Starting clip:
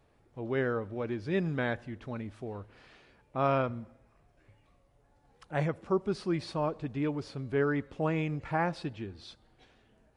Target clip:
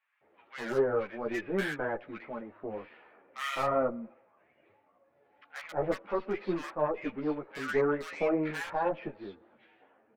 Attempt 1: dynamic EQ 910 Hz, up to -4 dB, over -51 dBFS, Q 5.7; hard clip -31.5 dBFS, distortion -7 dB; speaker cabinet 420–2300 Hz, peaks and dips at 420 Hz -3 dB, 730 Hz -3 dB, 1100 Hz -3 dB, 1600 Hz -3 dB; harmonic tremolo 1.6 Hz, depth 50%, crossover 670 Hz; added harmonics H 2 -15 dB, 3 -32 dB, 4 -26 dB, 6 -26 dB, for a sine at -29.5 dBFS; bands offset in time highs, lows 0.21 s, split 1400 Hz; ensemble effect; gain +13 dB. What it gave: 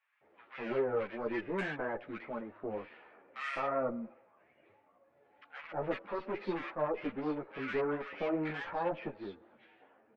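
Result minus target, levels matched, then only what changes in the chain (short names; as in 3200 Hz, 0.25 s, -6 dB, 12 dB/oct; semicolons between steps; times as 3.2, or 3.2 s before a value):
hard clip: distortion +11 dB
change: hard clip -23 dBFS, distortion -18 dB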